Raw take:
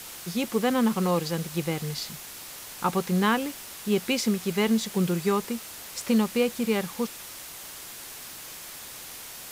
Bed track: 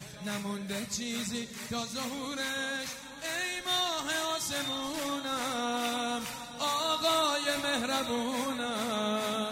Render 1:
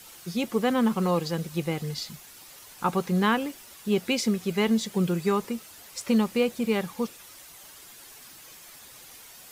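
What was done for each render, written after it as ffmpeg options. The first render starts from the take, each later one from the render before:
-af "afftdn=nr=9:nf=-42"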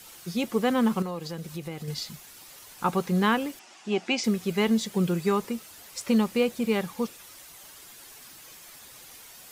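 -filter_complex "[0:a]asettb=1/sr,asplit=3[s0][s1][s2];[s0]atrim=end=1.024[s3];[s1]atrim=start=1.02:end=1.88,asetpts=PTS-STARTPTS,afade=t=in:d=0.004:c=qsin,afade=t=out:st=0.856:d=0.004:c=qsin,acompressor=threshold=0.02:ratio=2.5:attack=3.2:release=140:knee=1:detection=peak[s4];[s2]atrim=start=1.876[s5];[s3][s4]acrossfade=d=0.004:c1=hsin:c2=qsin[s6];[s6][s5]acrossfade=d=0.004:c1=qsin:c2=hsin,asettb=1/sr,asplit=3[s7][s8][s9];[s7]atrim=end=3.594[s10];[s8]atrim=start=3.59:end=4.24,asetpts=PTS-STARTPTS,afade=t=in:d=0.004:c=qsin,afade=t=out:st=0.646:d=0.004:c=qsin,highpass=250,equalizer=f=330:t=q:w=4:g=4,equalizer=f=480:t=q:w=4:g=-8,equalizer=f=750:t=q:w=4:g=9,equalizer=f=2600:t=q:w=4:g=3,equalizer=f=3900:t=q:w=4:g=-5,lowpass=f=7000:w=0.5412,lowpass=f=7000:w=1.3066[s11];[s9]atrim=start=4.236[s12];[s10][s11]acrossfade=d=0.004:c1=hsin:c2=qsin[s13];[s13][s12]acrossfade=d=0.004:c1=qsin:c2=hsin"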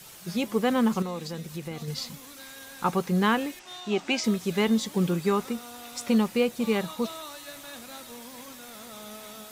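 -filter_complex "[1:a]volume=0.224[s0];[0:a][s0]amix=inputs=2:normalize=0"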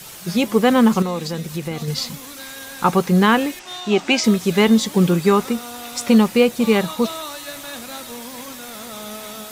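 -af "volume=2.99,alimiter=limit=0.708:level=0:latency=1"

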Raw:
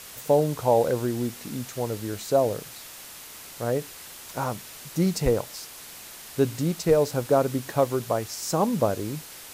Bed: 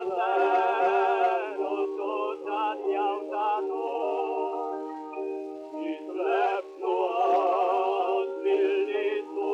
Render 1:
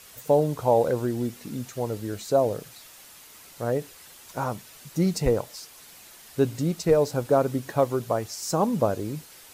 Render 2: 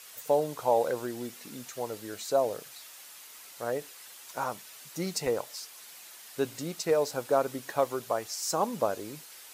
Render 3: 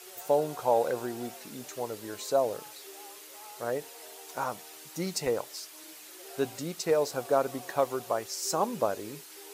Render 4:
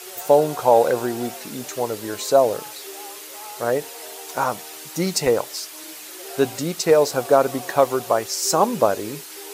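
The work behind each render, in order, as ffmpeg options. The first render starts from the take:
-af "afftdn=nr=7:nf=-43"
-af "highpass=f=780:p=1"
-filter_complex "[1:a]volume=0.0668[s0];[0:a][s0]amix=inputs=2:normalize=0"
-af "volume=3.35,alimiter=limit=0.708:level=0:latency=1"

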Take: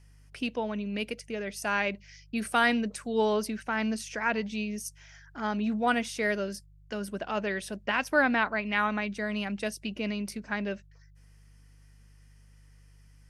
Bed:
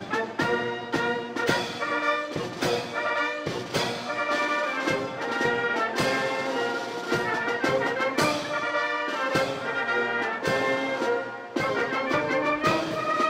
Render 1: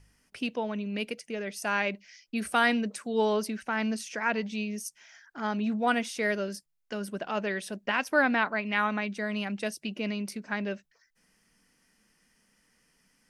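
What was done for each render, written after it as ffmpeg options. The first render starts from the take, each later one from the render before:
-af "bandreject=f=50:t=h:w=4,bandreject=f=100:t=h:w=4,bandreject=f=150:t=h:w=4"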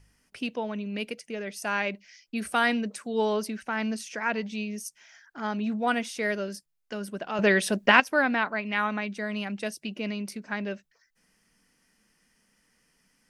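-filter_complex "[0:a]asplit=3[s0][s1][s2];[s0]atrim=end=7.392[s3];[s1]atrim=start=7.388:end=8.002,asetpts=PTS-STARTPTS,volume=3.35[s4];[s2]atrim=start=7.998[s5];[s3][s4]acrossfade=d=0.004:c1=hsin:c2=hsin[s6];[s6][s5]acrossfade=d=0.004:c1=hsin:c2=hsin"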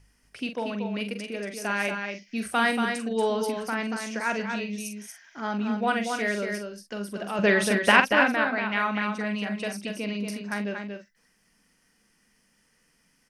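-filter_complex "[0:a]asplit=2[s0][s1];[s1]adelay=44,volume=0.398[s2];[s0][s2]amix=inputs=2:normalize=0,aecho=1:1:234:0.531"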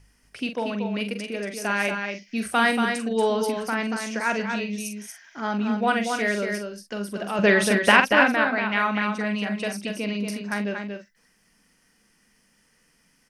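-af "volume=1.41,alimiter=limit=0.891:level=0:latency=1"

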